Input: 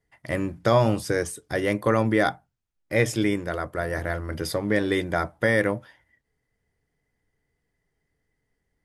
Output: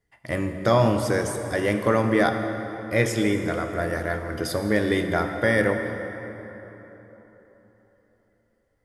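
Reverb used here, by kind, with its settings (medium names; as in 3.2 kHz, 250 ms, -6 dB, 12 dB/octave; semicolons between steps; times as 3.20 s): plate-style reverb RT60 3.9 s, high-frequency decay 0.55×, DRR 5 dB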